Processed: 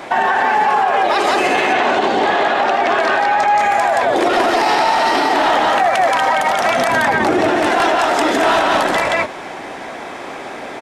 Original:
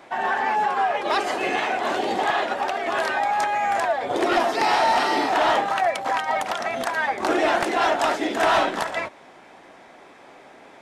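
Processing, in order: 6.88–7.51 s: peaking EQ 120 Hz +14.5 dB 2.3 oct; loudspeakers at several distances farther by 27 m -11 dB, 60 m -2 dB; compression, threshold -24 dBFS, peak gain reduction 12 dB; 1.73–3.59 s: distance through air 64 m; loudness maximiser +21.5 dB; trim -5.5 dB

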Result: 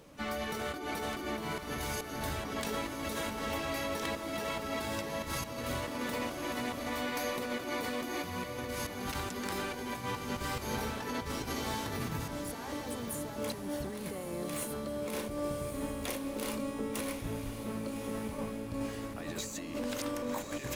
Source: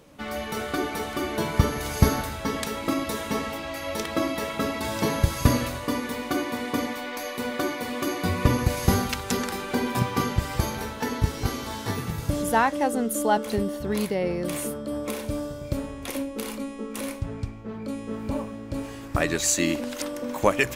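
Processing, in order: compressor with a negative ratio -32 dBFS, ratio -1; echo that smears into a reverb 1145 ms, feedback 45%, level -7 dB; harmony voices +12 st -13 dB; trim -7 dB

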